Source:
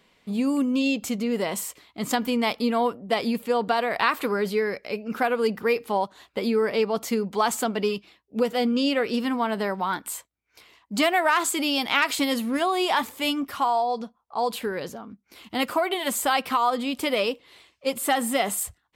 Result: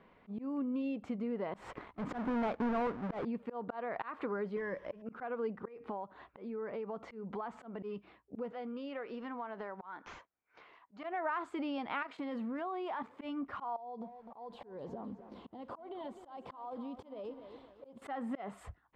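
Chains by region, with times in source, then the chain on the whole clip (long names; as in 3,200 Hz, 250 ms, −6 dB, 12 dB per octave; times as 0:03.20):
0:01.54–0:03.25: each half-wave held at its own peak + downward compressor 1.5 to 1, threshold −24 dBFS + leveller curve on the samples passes 2
0:04.56–0:05.02: linear delta modulator 64 kbit/s, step −41.5 dBFS + EQ curve with evenly spaced ripples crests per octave 1.2, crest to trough 10 dB
0:05.68–0:07.83: high-shelf EQ 7,900 Hz −9 dB + downward compressor 3 to 1, threshold −34 dBFS
0:08.52–0:11.04: high-pass filter 590 Hz 6 dB per octave + downward compressor 2 to 1, threshold −41 dBFS + bad sample-rate conversion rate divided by 3×, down none, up filtered
0:12.02–0:13.21: high-pass filter 130 Hz + output level in coarse steps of 10 dB
0:13.76–0:18.02: flat-topped bell 1,800 Hz −12 dB 1.3 octaves + downward compressor 10 to 1, threshold −37 dBFS + feedback echo at a low word length 256 ms, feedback 55%, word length 9 bits, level −12 dB
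whole clip: Chebyshev low-pass filter 1,300 Hz, order 2; volume swells 257 ms; downward compressor 2.5 to 1, threshold −43 dBFS; level +2 dB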